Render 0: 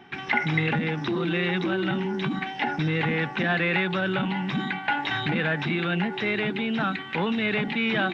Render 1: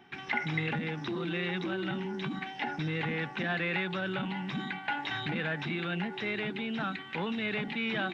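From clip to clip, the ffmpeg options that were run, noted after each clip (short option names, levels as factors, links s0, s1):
-af "highshelf=f=5300:g=5.5,volume=0.398"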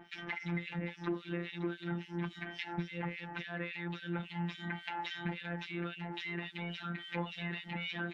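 -filter_complex "[0:a]afftfilt=real='hypot(re,im)*cos(PI*b)':imag='0':win_size=1024:overlap=0.75,acompressor=threshold=0.0141:ratio=12,acrossover=split=2100[s0][s1];[s0]aeval=exprs='val(0)*(1-1/2+1/2*cos(2*PI*3.6*n/s))':c=same[s2];[s1]aeval=exprs='val(0)*(1-1/2-1/2*cos(2*PI*3.6*n/s))':c=same[s3];[s2][s3]amix=inputs=2:normalize=0,volume=2.37"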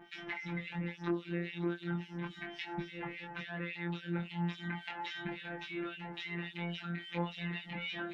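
-af "flanger=delay=20:depth=3.7:speed=0.36,volume=1.33"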